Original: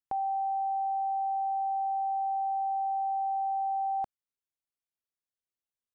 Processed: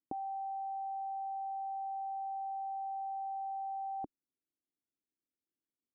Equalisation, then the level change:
low-pass with resonance 300 Hz, resonance Q 3.4
spectral tilt +3 dB per octave
+7.5 dB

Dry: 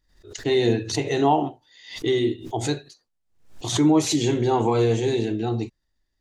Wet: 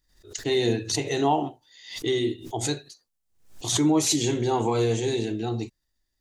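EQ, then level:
high-shelf EQ 5,200 Hz +11 dB
−3.5 dB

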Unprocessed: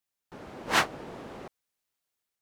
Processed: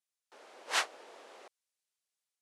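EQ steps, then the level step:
four-pole ladder high-pass 370 Hz, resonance 25%
low-pass filter 11,000 Hz 24 dB per octave
high-shelf EQ 2,100 Hz +11 dB
−6.0 dB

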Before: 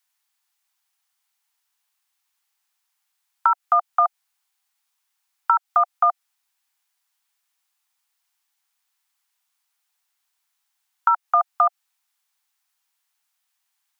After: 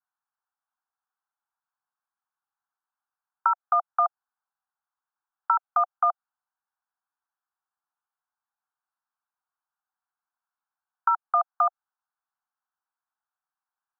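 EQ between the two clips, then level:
Butterworth high-pass 560 Hz 96 dB per octave
Butterworth low-pass 1,600 Hz 72 dB per octave
−4.5 dB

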